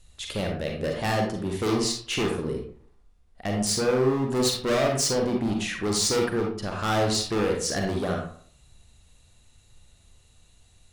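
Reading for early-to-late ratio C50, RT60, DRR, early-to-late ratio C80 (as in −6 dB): 3.0 dB, 0.55 s, 0.5 dB, 8.5 dB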